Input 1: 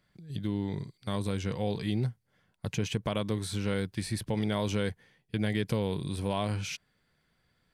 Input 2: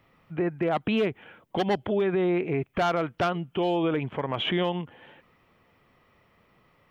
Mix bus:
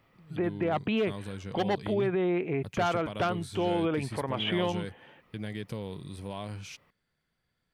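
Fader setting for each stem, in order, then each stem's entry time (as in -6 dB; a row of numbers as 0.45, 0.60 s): -7.5, -3.0 dB; 0.00, 0.00 s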